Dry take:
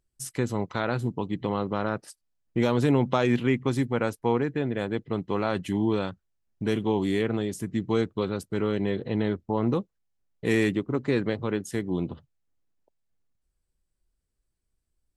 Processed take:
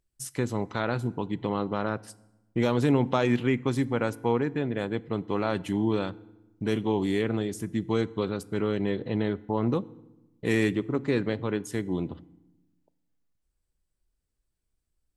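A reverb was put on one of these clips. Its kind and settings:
feedback delay network reverb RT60 0.98 s, low-frequency decay 1.45×, high-frequency decay 0.75×, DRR 18.5 dB
level −1 dB

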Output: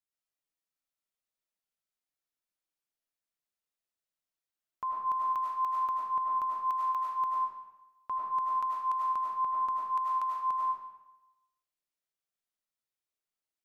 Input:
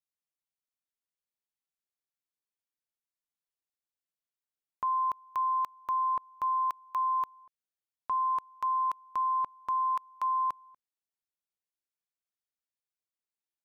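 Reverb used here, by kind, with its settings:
comb and all-pass reverb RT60 0.97 s, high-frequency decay 0.85×, pre-delay 60 ms, DRR −3.5 dB
level −4 dB

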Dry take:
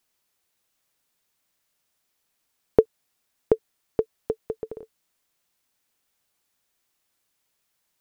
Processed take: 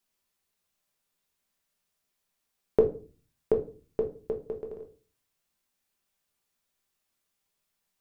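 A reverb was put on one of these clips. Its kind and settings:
rectangular room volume 210 cubic metres, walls furnished, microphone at 1.2 metres
level −7 dB

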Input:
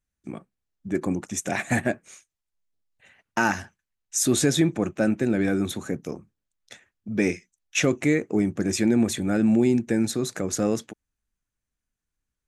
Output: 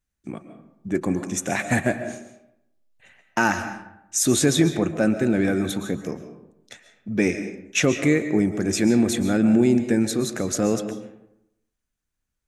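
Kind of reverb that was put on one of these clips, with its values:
comb and all-pass reverb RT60 0.83 s, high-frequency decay 0.55×, pre-delay 95 ms, DRR 9 dB
level +2 dB

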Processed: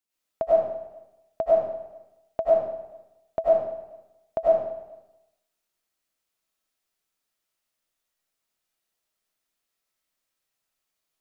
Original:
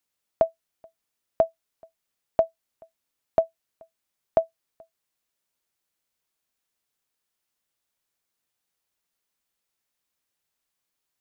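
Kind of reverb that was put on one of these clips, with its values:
comb and all-pass reverb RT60 0.89 s, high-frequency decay 0.9×, pre-delay 60 ms, DRR −8 dB
level −7.5 dB

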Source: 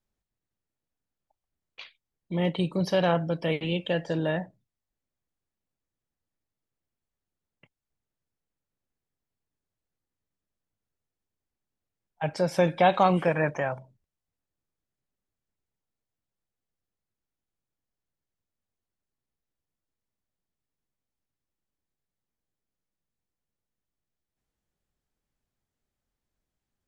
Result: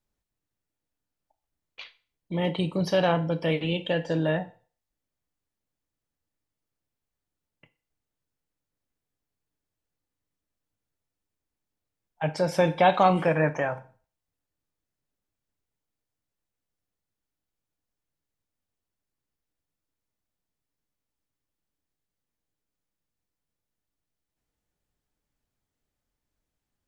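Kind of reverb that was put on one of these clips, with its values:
feedback delay network reverb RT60 0.41 s, low-frequency decay 0.75×, high-frequency decay 0.95×, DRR 9.5 dB
level +1 dB

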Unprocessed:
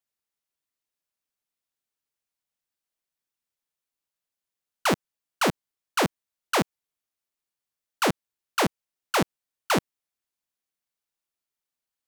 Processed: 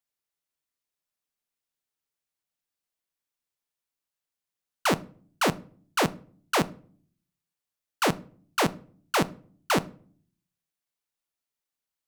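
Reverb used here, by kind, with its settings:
rectangular room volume 490 cubic metres, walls furnished, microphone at 0.37 metres
level −1 dB

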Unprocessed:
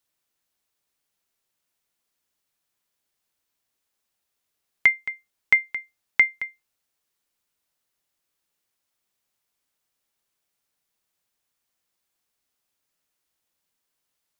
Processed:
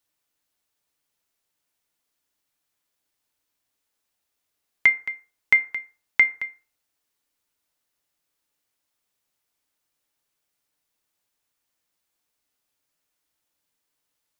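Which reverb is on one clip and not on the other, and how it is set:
feedback delay network reverb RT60 0.41 s, low-frequency decay 0.8×, high-frequency decay 0.55×, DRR 8.5 dB

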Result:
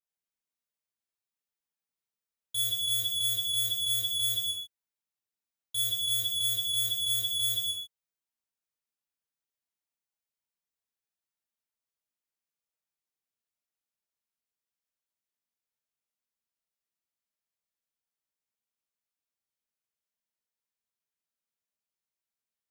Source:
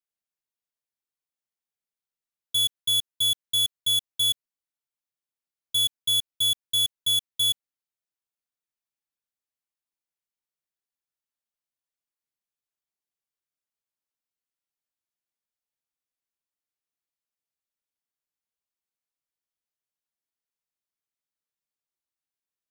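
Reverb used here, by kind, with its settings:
reverb whose tail is shaped and stops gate 360 ms falling, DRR −6.5 dB
level −9 dB

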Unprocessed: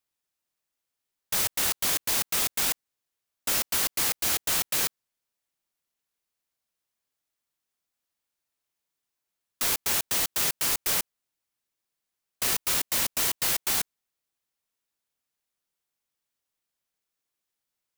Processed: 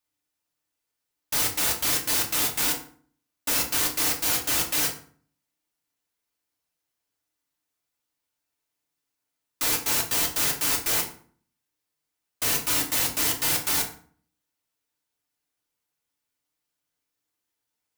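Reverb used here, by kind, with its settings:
feedback delay network reverb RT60 0.48 s, low-frequency decay 1.35×, high-frequency decay 0.7×, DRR −1 dB
level −1 dB

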